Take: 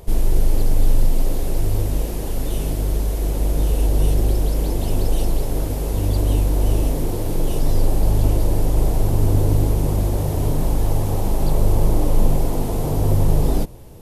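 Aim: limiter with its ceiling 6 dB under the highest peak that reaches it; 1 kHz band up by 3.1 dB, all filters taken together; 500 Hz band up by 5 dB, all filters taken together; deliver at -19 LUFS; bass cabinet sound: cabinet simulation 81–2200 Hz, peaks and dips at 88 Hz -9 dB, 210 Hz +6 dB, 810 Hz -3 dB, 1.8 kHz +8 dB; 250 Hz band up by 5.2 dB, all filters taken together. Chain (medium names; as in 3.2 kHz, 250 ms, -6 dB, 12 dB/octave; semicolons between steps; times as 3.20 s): peaking EQ 250 Hz +3 dB; peaking EQ 500 Hz +4.5 dB; peaking EQ 1 kHz +4 dB; peak limiter -8 dBFS; cabinet simulation 81–2200 Hz, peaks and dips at 88 Hz -9 dB, 210 Hz +6 dB, 810 Hz -3 dB, 1.8 kHz +8 dB; trim +4.5 dB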